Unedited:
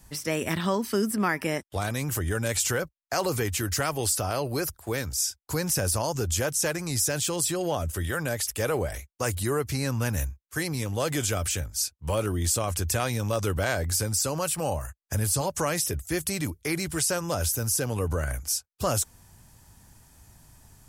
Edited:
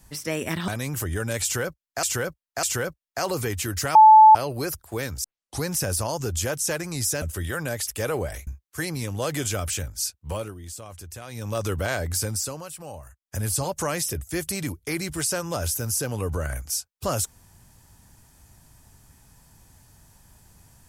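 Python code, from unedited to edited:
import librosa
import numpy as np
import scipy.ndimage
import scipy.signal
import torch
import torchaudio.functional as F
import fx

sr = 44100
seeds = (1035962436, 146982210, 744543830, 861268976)

y = fx.edit(x, sr, fx.cut(start_s=0.68, length_s=1.15),
    fx.repeat(start_s=2.58, length_s=0.6, count=3),
    fx.bleep(start_s=3.9, length_s=0.4, hz=870.0, db=-7.0),
    fx.tape_start(start_s=5.19, length_s=0.39),
    fx.cut(start_s=7.17, length_s=0.65),
    fx.cut(start_s=9.07, length_s=1.18),
    fx.fade_down_up(start_s=12.01, length_s=1.36, db=-13.0, fade_s=0.32),
    fx.fade_down_up(start_s=14.08, length_s=1.18, db=-10.5, fade_s=0.35), tone=tone)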